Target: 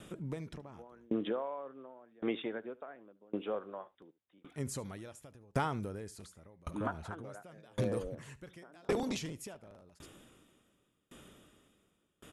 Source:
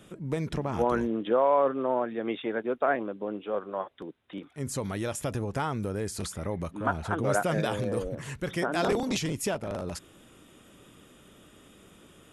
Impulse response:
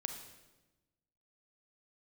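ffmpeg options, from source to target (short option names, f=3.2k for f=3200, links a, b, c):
-filter_complex "[0:a]acompressor=threshold=-28dB:ratio=6,asplit=2[a][b];[b]aecho=0:1:74:0.112[c];[a][c]amix=inputs=2:normalize=0,aeval=exprs='val(0)*pow(10,-31*if(lt(mod(0.9*n/s,1),2*abs(0.9)/1000),1-mod(0.9*n/s,1)/(2*abs(0.9)/1000),(mod(0.9*n/s,1)-2*abs(0.9)/1000)/(1-2*abs(0.9)/1000))/20)':c=same,volume=2dB"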